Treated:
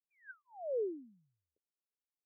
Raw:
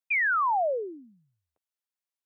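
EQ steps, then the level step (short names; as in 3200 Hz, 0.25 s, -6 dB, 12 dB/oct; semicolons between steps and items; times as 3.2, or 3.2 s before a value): Butterworth band-stop 1100 Hz, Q 0.57; rippled Chebyshev low-pass 1600 Hz, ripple 9 dB; bell 1200 Hz -12 dB 0.65 oct; +1.5 dB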